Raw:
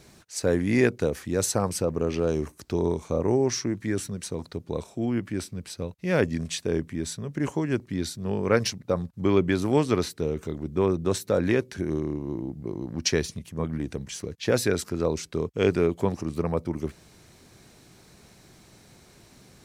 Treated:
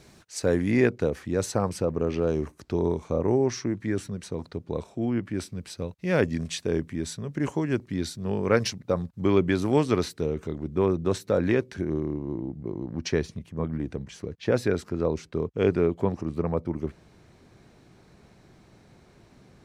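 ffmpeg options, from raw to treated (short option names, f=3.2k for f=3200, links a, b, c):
-af "asetnsamples=n=441:p=0,asendcmd='0.71 lowpass f 2900;5.38 lowpass f 7200;10.26 lowpass f 3500;11.84 lowpass f 1700',lowpass=f=7.6k:p=1"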